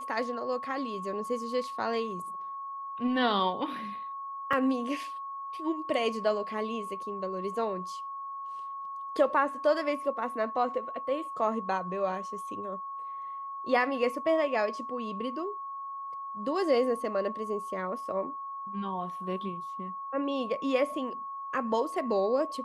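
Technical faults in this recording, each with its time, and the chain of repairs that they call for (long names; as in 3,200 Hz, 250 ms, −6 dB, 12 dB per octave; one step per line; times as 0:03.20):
whistle 1,100 Hz −36 dBFS
0:04.53: drop-out 3.9 ms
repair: notch filter 1,100 Hz, Q 30
repair the gap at 0:04.53, 3.9 ms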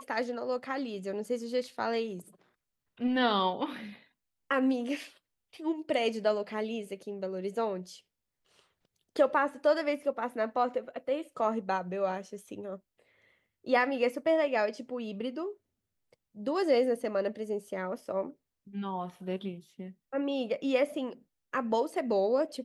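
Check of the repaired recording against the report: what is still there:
none of them is left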